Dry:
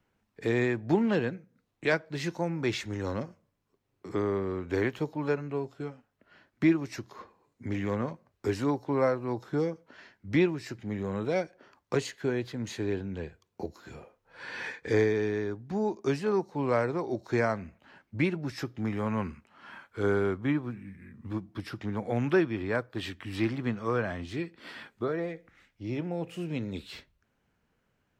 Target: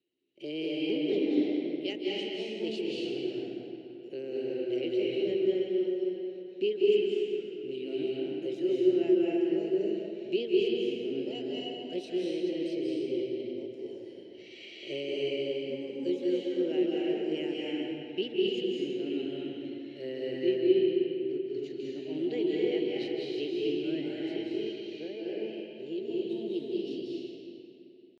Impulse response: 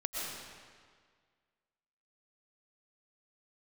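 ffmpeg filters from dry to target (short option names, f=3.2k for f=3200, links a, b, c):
-filter_complex "[0:a]asplit=3[a][b][c];[a]bandpass=f=270:t=q:w=8,volume=0dB[d];[b]bandpass=f=2.29k:t=q:w=8,volume=-6dB[e];[c]bandpass=f=3.01k:t=q:w=8,volume=-9dB[f];[d][e][f]amix=inputs=3:normalize=0,asetrate=57191,aresample=44100,atempo=0.771105[g];[1:a]atrim=start_sample=2205,asetrate=27342,aresample=44100[h];[g][h]afir=irnorm=-1:irlink=0,volume=2dB"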